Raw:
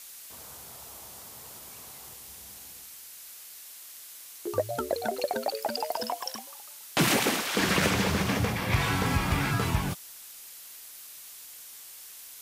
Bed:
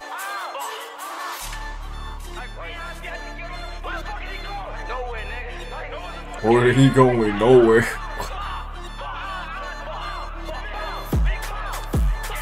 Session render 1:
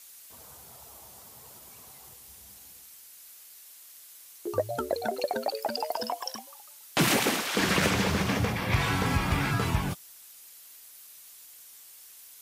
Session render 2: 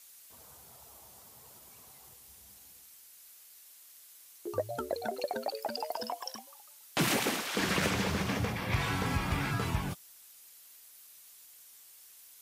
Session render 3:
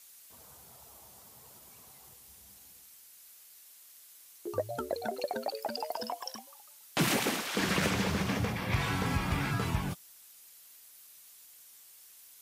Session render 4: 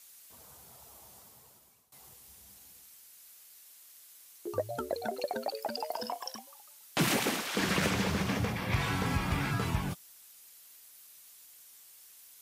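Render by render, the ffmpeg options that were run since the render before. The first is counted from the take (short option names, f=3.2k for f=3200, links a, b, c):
-af "afftdn=nr=6:nf=-47"
-af "volume=-5dB"
-af "equalizer=f=180:w=1.5:g=2"
-filter_complex "[0:a]asettb=1/sr,asplit=3[a][b][c];[a]atrim=end=5.864[d];[b]atrim=start=5.86:end=6.29,asetpts=PTS-STARTPTS,afade=t=in:d=0.004:c=qsin,afade=t=out:st=0.426:d=0.004:c=qsin,asplit=2[e][f];[f]adelay=34,volume=-13dB[g];[e][g]amix=inputs=2:normalize=0,atrim=end_sample=18963[h];[c]atrim=start=6.286[i];[d][h]acrossfade=d=0.004:c1=hsin:c2=qsin[j];[j][i]acrossfade=d=0.004:c1=qsin:c2=hsin,asplit=2[k][l];[k]atrim=end=1.92,asetpts=PTS-STARTPTS,afade=t=out:st=1.16:d=0.76:silence=0.0841395[m];[l]atrim=start=1.92,asetpts=PTS-STARTPTS,afade=t=in:d=0.004:c=hsin:silence=0.0841395[n];[m][n]concat=n=2:v=0:a=1"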